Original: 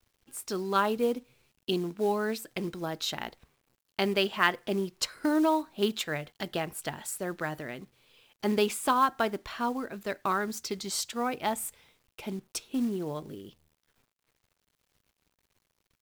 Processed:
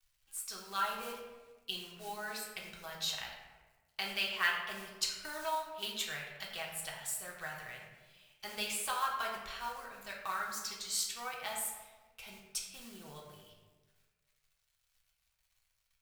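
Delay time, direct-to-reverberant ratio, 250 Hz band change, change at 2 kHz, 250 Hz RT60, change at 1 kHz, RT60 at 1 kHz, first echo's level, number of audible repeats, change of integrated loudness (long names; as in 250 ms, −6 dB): no echo audible, −2.5 dB, −22.5 dB, −4.0 dB, 1.4 s, −8.5 dB, 1.2 s, no echo audible, no echo audible, −7.0 dB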